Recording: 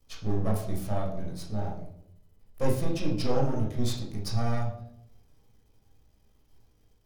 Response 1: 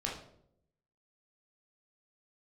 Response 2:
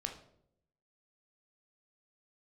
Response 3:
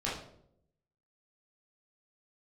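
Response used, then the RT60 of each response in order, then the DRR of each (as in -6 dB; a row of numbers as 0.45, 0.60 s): 1; 0.70, 0.70, 0.70 s; -3.0, 3.0, -7.5 dB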